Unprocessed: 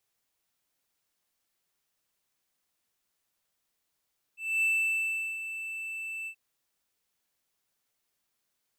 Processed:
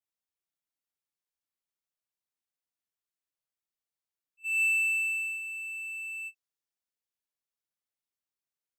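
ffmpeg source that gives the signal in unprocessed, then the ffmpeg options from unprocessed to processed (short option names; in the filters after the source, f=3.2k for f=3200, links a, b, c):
-f lavfi -i "aevalsrc='0.0891*(1-4*abs(mod(2650*t+0.25,1)-0.5))':d=1.978:s=44100,afade=t=in:d=0.255,afade=t=out:st=0.255:d=0.753:silence=0.266,afade=t=out:st=1.9:d=0.078"
-af "adynamicequalizer=threshold=0.00316:dfrequency=5500:dqfactor=1.4:tfrequency=5500:tqfactor=1.4:attack=5:release=100:ratio=0.375:range=3:mode=boostabove:tftype=bell,agate=range=-16dB:threshold=-37dB:ratio=16:detection=peak"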